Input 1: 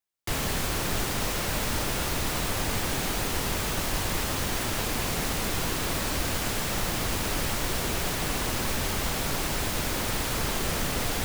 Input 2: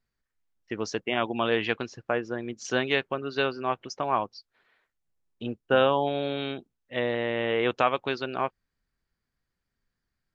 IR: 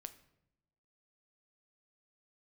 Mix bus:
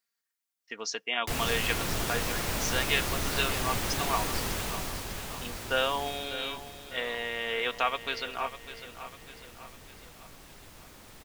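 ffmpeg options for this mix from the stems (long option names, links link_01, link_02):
-filter_complex "[0:a]adelay=1000,volume=-3.5dB,afade=type=out:start_time=4.41:duration=0.67:silence=0.354813,afade=type=out:start_time=6.03:duration=0.33:silence=0.298538,asplit=2[link_01][link_02];[link_02]volume=-9.5dB[link_03];[1:a]highpass=frequency=1300:poles=1,highshelf=frequency=5300:gain=10,aecho=1:1:4.3:0.47,volume=-1.5dB,asplit=3[link_04][link_05][link_06];[link_05]volume=-22dB[link_07];[link_06]volume=-12dB[link_08];[2:a]atrim=start_sample=2205[link_09];[link_07][link_09]afir=irnorm=-1:irlink=0[link_10];[link_03][link_08]amix=inputs=2:normalize=0,aecho=0:1:600|1200|1800|2400|3000|3600|4200:1|0.5|0.25|0.125|0.0625|0.0312|0.0156[link_11];[link_01][link_04][link_10][link_11]amix=inputs=4:normalize=0"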